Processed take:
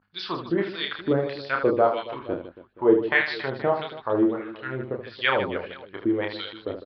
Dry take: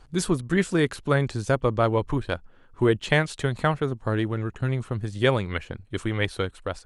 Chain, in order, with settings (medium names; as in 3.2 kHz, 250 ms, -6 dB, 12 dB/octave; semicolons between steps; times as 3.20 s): expander -41 dBFS; hum 50 Hz, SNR 23 dB; LFO band-pass sine 1.6 Hz 310–4200 Hz; reverse bouncing-ball echo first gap 30 ms, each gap 1.6×, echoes 5; resampled via 11.025 kHz; trim +6 dB